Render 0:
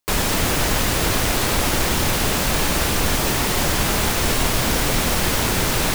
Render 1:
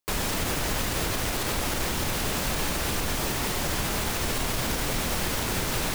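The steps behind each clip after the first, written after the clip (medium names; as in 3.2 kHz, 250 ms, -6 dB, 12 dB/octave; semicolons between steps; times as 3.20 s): peak limiter -11 dBFS, peak gain reduction 5.5 dB; trim -6.5 dB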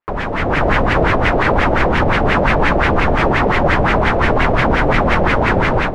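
level rider gain up to 8 dB; LFO low-pass sine 5.7 Hz 580–2200 Hz; trim +6 dB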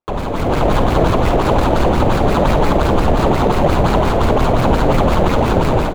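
median filter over 25 samples; early reflections 51 ms -11.5 dB, 68 ms -15.5 dB; trim +1.5 dB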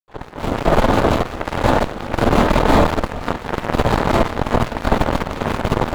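Schroeder reverb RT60 0.53 s, combs from 26 ms, DRR -9.5 dB; Chebyshev shaper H 3 -30 dB, 4 -11 dB, 7 -19 dB, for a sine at 10.5 dBFS; trim -13.5 dB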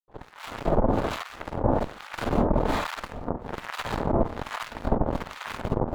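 harmonic tremolo 1.2 Hz, depth 100%, crossover 1 kHz; trim -6 dB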